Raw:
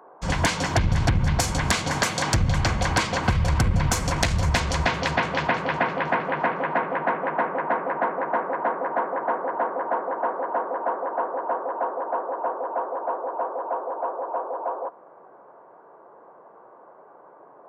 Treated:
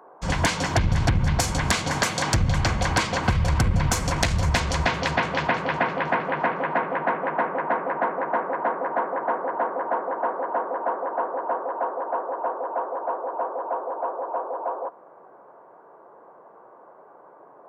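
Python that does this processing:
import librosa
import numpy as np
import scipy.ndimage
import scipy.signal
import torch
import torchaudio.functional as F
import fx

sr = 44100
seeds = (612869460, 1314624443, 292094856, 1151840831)

y = fx.highpass(x, sr, hz=140.0, slope=6, at=(11.65, 13.34))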